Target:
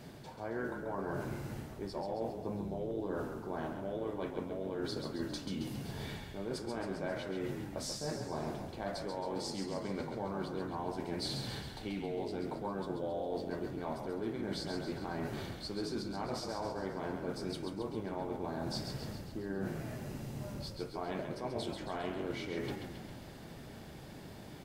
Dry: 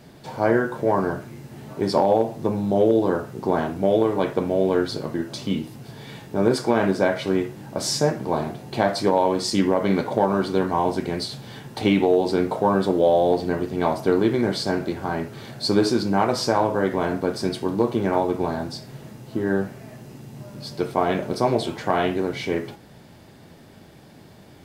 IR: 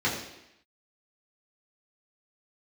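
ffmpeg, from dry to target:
-filter_complex "[0:a]areverse,acompressor=threshold=0.0224:ratio=10,areverse,asplit=8[s0][s1][s2][s3][s4][s5][s6][s7];[s1]adelay=135,afreqshift=-36,volume=0.501[s8];[s2]adelay=270,afreqshift=-72,volume=0.285[s9];[s3]adelay=405,afreqshift=-108,volume=0.162[s10];[s4]adelay=540,afreqshift=-144,volume=0.0933[s11];[s5]adelay=675,afreqshift=-180,volume=0.0531[s12];[s6]adelay=810,afreqshift=-216,volume=0.0302[s13];[s7]adelay=945,afreqshift=-252,volume=0.0172[s14];[s0][s8][s9][s10][s11][s12][s13][s14]amix=inputs=8:normalize=0,volume=0.708"

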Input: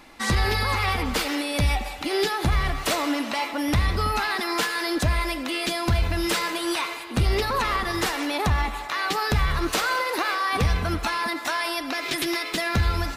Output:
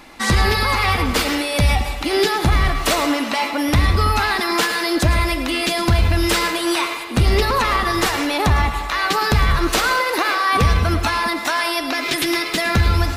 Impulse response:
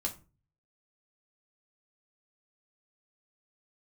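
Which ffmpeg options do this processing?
-filter_complex "[0:a]asplit=2[s0][s1];[1:a]atrim=start_sample=2205,adelay=106[s2];[s1][s2]afir=irnorm=-1:irlink=0,volume=0.224[s3];[s0][s3]amix=inputs=2:normalize=0,volume=2"

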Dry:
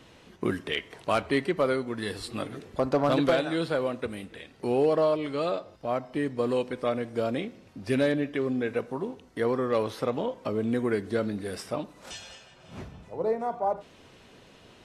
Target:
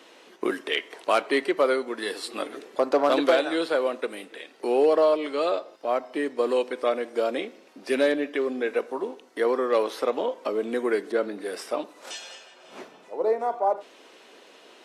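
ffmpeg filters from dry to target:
-filter_complex "[0:a]highpass=f=310:w=0.5412,highpass=f=310:w=1.3066,asettb=1/sr,asplit=3[s0][s1][s2];[s0]atrim=end=11.124[s3];[s1]atrim=start=11.12:end=11.62,asetpts=PTS-STARTPTS,afade=t=in:d=0.004:c=qsin,afade=t=out:st=0.496:d=0.004:c=qsin,adynamicequalizer=threshold=0.00355:dfrequency=2700:dqfactor=0.7:tfrequency=2700:tqfactor=0.7:attack=5:release=100:ratio=0.375:range=3:mode=cutabove:tftype=highshelf[s4];[s2]atrim=start=11.616[s5];[s3][s4]acrossfade=d=0.004:c1=hsin:c2=qsin[s6];[s6][s5]acrossfade=d=0.004:c1=qsin:c2=hsin,volume=1.58"

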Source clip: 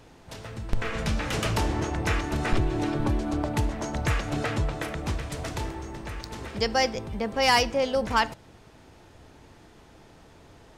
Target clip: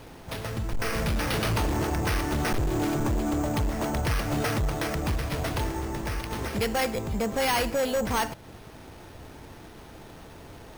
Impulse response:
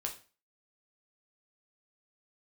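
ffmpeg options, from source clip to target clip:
-filter_complex "[0:a]asplit=2[s0][s1];[s1]acompressor=threshold=0.02:ratio=6,volume=1.12[s2];[s0][s2]amix=inputs=2:normalize=0,acrusher=samples=6:mix=1:aa=0.000001,asoftclip=type=hard:threshold=0.075"

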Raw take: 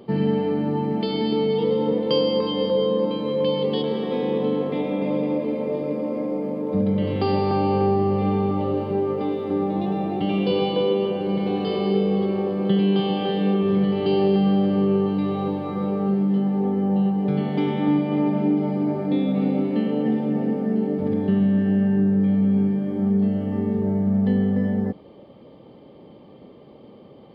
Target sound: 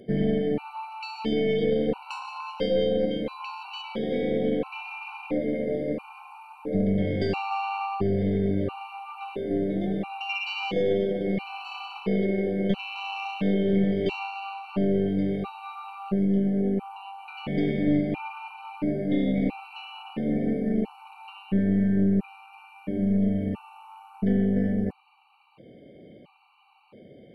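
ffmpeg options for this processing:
-af "superequalizer=12b=3.55:16b=3.16,aeval=exprs='(tanh(4.47*val(0)+0.55)-tanh(0.55))/4.47':c=same,afftfilt=real='re*gt(sin(2*PI*0.74*pts/sr)*(1-2*mod(floor(b*sr/1024/760),2)),0)':imag='im*gt(sin(2*PI*0.74*pts/sr)*(1-2*mod(floor(b*sr/1024/760),2)),0)':win_size=1024:overlap=0.75"

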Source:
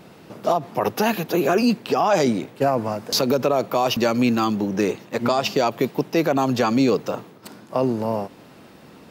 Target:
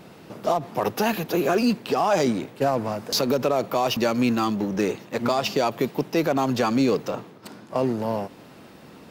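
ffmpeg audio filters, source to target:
-filter_complex "[0:a]asettb=1/sr,asplit=3[s0][s1][s2];[s0]atrim=end=7.084[s3];[s1]atrim=start=7.08:end=7.78,asetpts=PTS-STARTPTS,afade=t=in:d=0.004:c=qsin,afade=t=out:st=0.696:d=0.004:c=qsin,highshelf=f=9500:g=-7[s4];[s2]atrim=start=7.776[s5];[s3][s4]acrossfade=d=0.004:c1=hsin:c2=qsin[s6];[s6][s5]acrossfade=d=0.004:c1=qsin:c2=hsin,asplit=2[s7][s8];[s8]aeval=exprs='0.0398*(abs(mod(val(0)/0.0398+3,4)-2)-1)':c=same,volume=0.316[s9];[s7][s9]amix=inputs=2:normalize=0,volume=0.75"

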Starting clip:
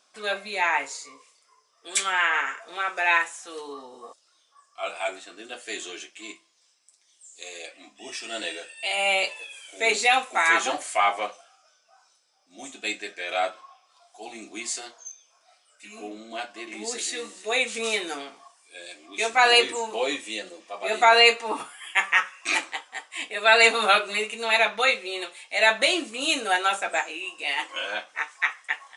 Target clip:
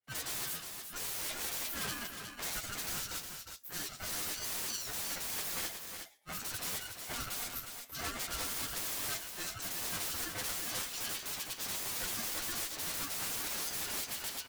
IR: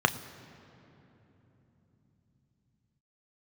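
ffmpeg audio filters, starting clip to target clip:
-filter_complex "[0:a]agate=range=0.0224:threshold=0.00224:ratio=3:detection=peak,dynaudnorm=f=180:g=7:m=1.88,aeval=exprs='(mod(25.1*val(0)+1,2)-1)/25.1':c=same,acrossover=split=1100[s0][s1];[s1]adelay=60[s2];[s0][s2]amix=inputs=2:normalize=0,flanger=delay=19.5:depth=3.2:speed=1.3,asplit=2[s3][s4];[s4]aecho=0:1:493|724:0.178|0.447[s5];[s3][s5]amix=inputs=2:normalize=0,asetrate=88200,aresample=44100,aeval=exprs='val(0)*sgn(sin(2*PI*710*n/s))':c=same"

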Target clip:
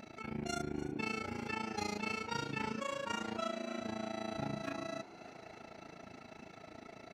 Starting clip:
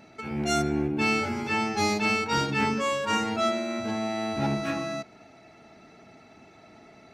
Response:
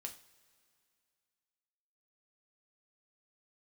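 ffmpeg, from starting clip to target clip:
-filter_complex "[0:a]acompressor=threshold=0.00398:ratio=2,tremolo=f=28:d=0.889,asplit=7[s0][s1][s2][s3][s4][s5][s6];[s1]adelay=297,afreqshift=64,volume=0.15[s7];[s2]adelay=594,afreqshift=128,volume=0.0923[s8];[s3]adelay=891,afreqshift=192,volume=0.0575[s9];[s4]adelay=1188,afreqshift=256,volume=0.0355[s10];[s5]adelay=1485,afreqshift=320,volume=0.0221[s11];[s6]adelay=1782,afreqshift=384,volume=0.0136[s12];[s0][s7][s8][s9][s10][s11][s12]amix=inputs=7:normalize=0,volume=1.58"

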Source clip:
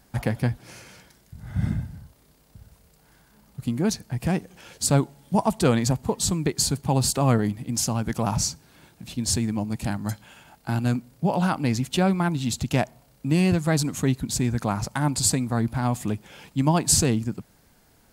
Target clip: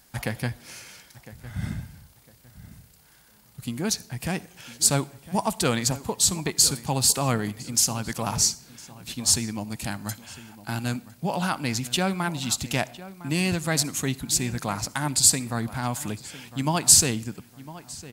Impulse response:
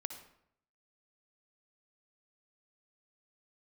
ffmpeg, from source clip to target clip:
-filter_complex "[0:a]tiltshelf=f=1200:g=-5.5,asplit=2[s0][s1];[s1]adelay=1006,lowpass=f=2600:p=1,volume=0.158,asplit=2[s2][s3];[s3]adelay=1006,lowpass=f=2600:p=1,volume=0.28,asplit=2[s4][s5];[s5]adelay=1006,lowpass=f=2600:p=1,volume=0.28[s6];[s0][s2][s4][s6]amix=inputs=4:normalize=0,asplit=2[s7][s8];[1:a]atrim=start_sample=2205,highshelf=f=9100:g=8.5[s9];[s8][s9]afir=irnorm=-1:irlink=0,volume=0.266[s10];[s7][s10]amix=inputs=2:normalize=0,volume=0.794"

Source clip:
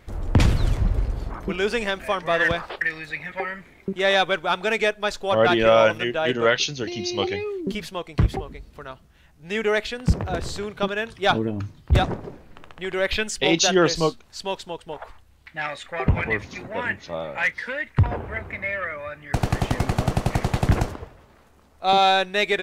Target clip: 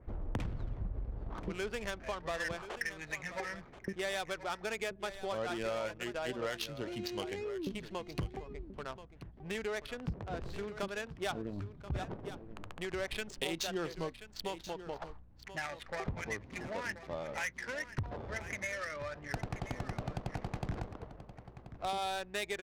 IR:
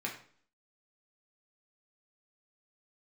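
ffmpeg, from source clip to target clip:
-af "equalizer=f=82:w=5.3:g=-4.5,acompressor=threshold=0.0224:ratio=4,aeval=exprs='val(0)+0.00126*(sin(2*PI*60*n/s)+sin(2*PI*2*60*n/s)/2+sin(2*PI*3*60*n/s)/3+sin(2*PI*4*60*n/s)/4+sin(2*PI*5*60*n/s)/5)':c=same,adynamicsmooth=sensitivity=7.5:basefreq=860,aecho=1:1:1032:0.224,adynamicequalizer=threshold=0.00251:dfrequency=3200:dqfactor=0.7:tfrequency=3200:tqfactor=0.7:attack=5:release=100:ratio=0.375:range=2.5:mode=boostabove:tftype=highshelf,volume=0.631"

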